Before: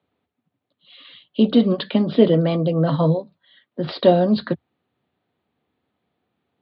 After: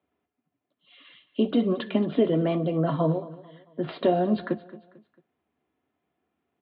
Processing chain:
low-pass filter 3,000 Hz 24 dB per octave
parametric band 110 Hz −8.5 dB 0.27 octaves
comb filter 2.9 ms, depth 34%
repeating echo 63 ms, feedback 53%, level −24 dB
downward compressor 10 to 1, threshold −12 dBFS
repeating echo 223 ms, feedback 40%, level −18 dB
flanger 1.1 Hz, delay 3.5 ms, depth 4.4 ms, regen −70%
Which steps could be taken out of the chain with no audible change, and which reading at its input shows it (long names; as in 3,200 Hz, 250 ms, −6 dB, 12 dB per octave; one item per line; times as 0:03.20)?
all steps act on this source